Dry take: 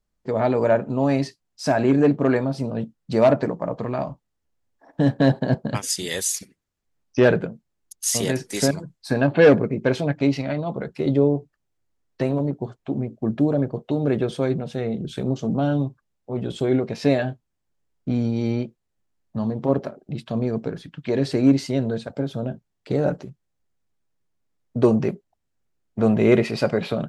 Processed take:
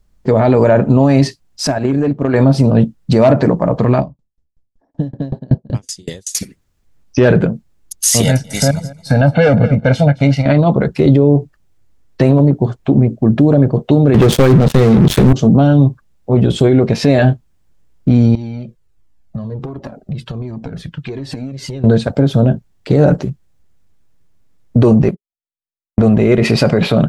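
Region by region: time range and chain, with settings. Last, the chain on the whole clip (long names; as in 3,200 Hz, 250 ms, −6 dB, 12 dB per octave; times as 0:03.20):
0:01.67–0:02.34: noise gate −20 dBFS, range −12 dB + downward compressor 16 to 1, threshold −26 dBFS
0:04.00–0:06.35: low-pass filter 5,400 Hz + parametric band 1,800 Hz −13 dB 3 octaves + tremolo with a ramp in dB decaying 5.3 Hz, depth 35 dB
0:08.22–0:10.46: comb filter 1.4 ms, depth 93% + repeating echo 218 ms, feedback 25%, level −19.5 dB + expander for the loud parts, over −32 dBFS
0:14.14–0:15.33: high-pass filter 58 Hz 24 dB per octave + transient designer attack +12 dB, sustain −2 dB + leveller curve on the samples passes 5
0:18.35–0:21.84: downward compressor 10 to 1, threshold −32 dBFS + flanger whose copies keep moving one way falling 1.4 Hz
0:25.02–0:26.42: noise gate −33 dBFS, range −43 dB + transient designer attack +9 dB, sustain −9 dB
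whole clip: low-shelf EQ 150 Hz +10 dB; boost into a limiter +14.5 dB; level −1 dB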